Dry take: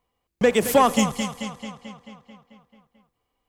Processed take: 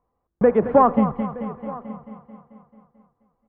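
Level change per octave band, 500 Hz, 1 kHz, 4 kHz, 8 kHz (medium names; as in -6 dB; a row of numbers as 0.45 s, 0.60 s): +2.5 dB, +2.0 dB, under -25 dB, under -40 dB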